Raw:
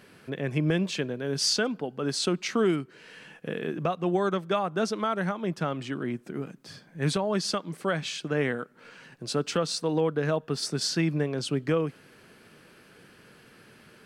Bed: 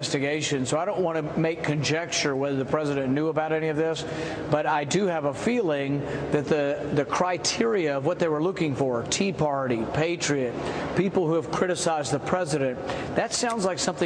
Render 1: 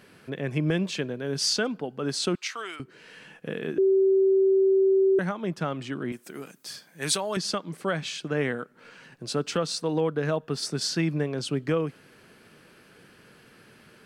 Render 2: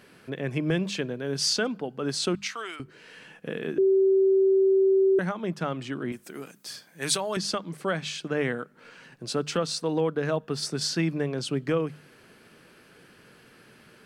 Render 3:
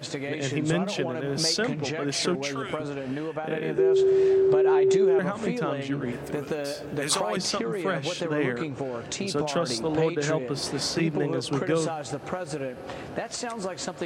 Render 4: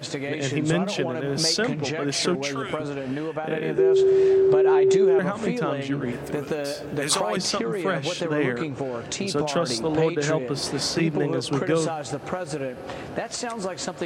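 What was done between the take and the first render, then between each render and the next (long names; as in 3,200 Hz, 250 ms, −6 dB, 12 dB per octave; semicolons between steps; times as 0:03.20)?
0:02.35–0:02.80: high-pass filter 1,100 Hz; 0:03.78–0:05.19: beep over 385 Hz −17 dBFS; 0:06.12–0:07.37: RIAA equalisation recording
mains-hum notches 50/100/150/200 Hz
mix in bed −7 dB
level +2.5 dB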